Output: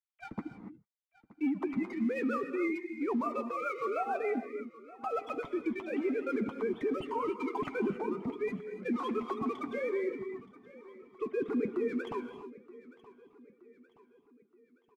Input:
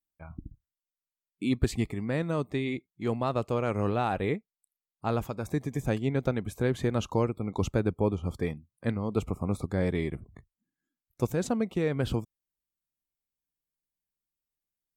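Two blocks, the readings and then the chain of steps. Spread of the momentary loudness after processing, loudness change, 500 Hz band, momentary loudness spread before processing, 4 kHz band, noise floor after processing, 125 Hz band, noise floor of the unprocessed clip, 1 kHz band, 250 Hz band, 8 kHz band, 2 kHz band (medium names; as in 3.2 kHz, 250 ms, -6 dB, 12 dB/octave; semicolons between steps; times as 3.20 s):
14 LU, -4.5 dB, -3.0 dB, 7 LU, -11.0 dB, -72 dBFS, -21.0 dB, under -85 dBFS, -1.0 dB, -3.0 dB, under -15 dB, -2.0 dB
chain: formants replaced by sine waves; low-pass that closes with the level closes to 2.2 kHz, closed at -27 dBFS; reverb removal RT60 1.8 s; comb 0.9 ms, depth 59%; waveshaping leveller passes 1; in parallel at -3 dB: compressor with a negative ratio -32 dBFS; on the sum: peak limiter -21.5 dBFS, peak gain reduction 11.5 dB; flange 1.3 Hz, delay 6.8 ms, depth 2.8 ms, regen -38%; rotary cabinet horn 6.7 Hz, later 0.6 Hz, at 5.60 s; on a send: feedback delay 923 ms, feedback 49%, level -19.5 dB; on the sum: gated-style reverb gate 310 ms rising, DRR 9 dB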